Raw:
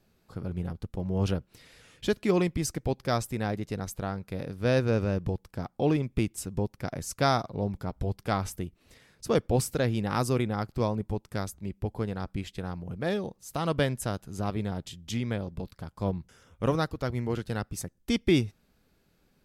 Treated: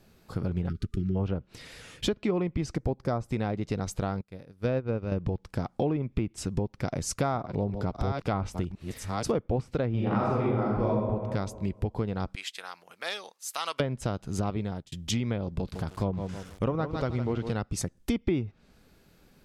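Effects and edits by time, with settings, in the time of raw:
0.69–1.15 s: spectral selection erased 410–1200 Hz
2.76–3.31 s: peaking EQ 3 kHz -10.5 dB 1.4 oct
4.21–5.12 s: upward expansion 2.5:1, over -38 dBFS
6.65–9.38 s: chunks repeated in reverse 526 ms, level -10.5 dB
9.90–10.95 s: reverb throw, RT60 1.2 s, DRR -6 dB
12.35–13.80 s: high-pass 1.4 kHz
14.49–14.92 s: fade out
15.52–17.53 s: bit-crushed delay 157 ms, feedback 35%, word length 8-bit, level -9.5 dB
whole clip: low-pass that closes with the level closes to 1.9 kHz, closed at -22.5 dBFS; dynamic bell 1.7 kHz, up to -6 dB, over -55 dBFS, Q 4.5; compression 4:1, threshold -34 dBFS; trim +8 dB

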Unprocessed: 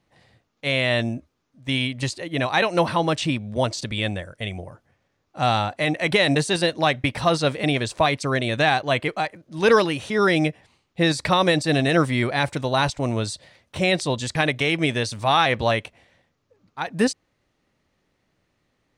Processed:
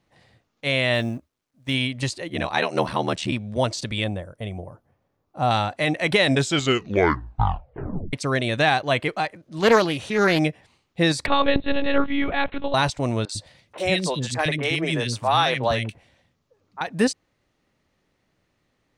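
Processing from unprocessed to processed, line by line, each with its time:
0.94–1.74 s: companding laws mixed up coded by A
2.29–3.33 s: ring modulator 38 Hz
4.04–5.51 s: high-order bell 3.6 kHz -9.5 dB 2.8 oct
6.24 s: tape stop 1.89 s
9.11–10.39 s: loudspeaker Doppler distortion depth 0.27 ms
11.26–12.74 s: monotone LPC vocoder at 8 kHz 280 Hz
13.25–16.81 s: three bands offset in time mids, highs, lows 40/100 ms, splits 320/1800 Hz

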